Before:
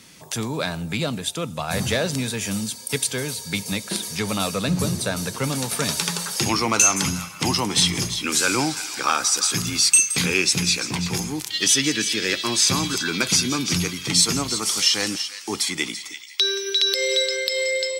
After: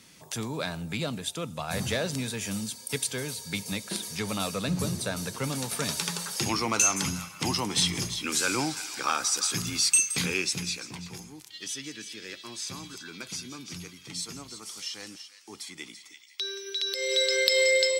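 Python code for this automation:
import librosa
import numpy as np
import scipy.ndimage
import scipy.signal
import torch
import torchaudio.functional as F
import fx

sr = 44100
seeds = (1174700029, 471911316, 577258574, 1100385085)

y = fx.gain(x, sr, db=fx.line((10.21, -6.5), (11.29, -18.0), (15.48, -18.0), (16.93, -10.0), (17.41, 1.0)))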